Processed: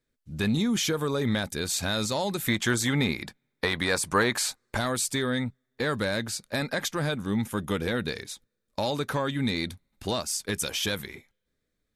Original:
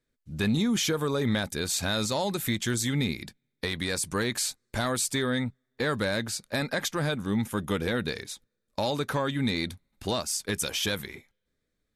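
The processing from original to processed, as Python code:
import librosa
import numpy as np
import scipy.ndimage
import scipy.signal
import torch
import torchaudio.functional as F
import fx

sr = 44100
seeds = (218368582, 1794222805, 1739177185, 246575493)

y = fx.peak_eq(x, sr, hz=990.0, db=10.0, octaves=2.3, at=(2.48, 4.77))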